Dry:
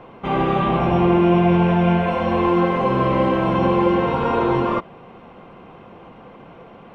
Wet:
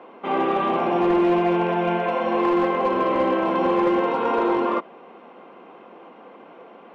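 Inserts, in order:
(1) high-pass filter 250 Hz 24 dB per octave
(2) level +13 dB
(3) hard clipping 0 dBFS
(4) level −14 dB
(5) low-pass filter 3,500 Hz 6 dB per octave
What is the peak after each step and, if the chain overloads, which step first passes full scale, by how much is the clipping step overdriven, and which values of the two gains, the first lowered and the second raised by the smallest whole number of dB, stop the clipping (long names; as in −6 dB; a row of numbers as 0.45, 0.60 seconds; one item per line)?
−6.5, +6.5, 0.0, −14.0, −14.0 dBFS
step 2, 6.5 dB
step 2 +6 dB, step 4 −7 dB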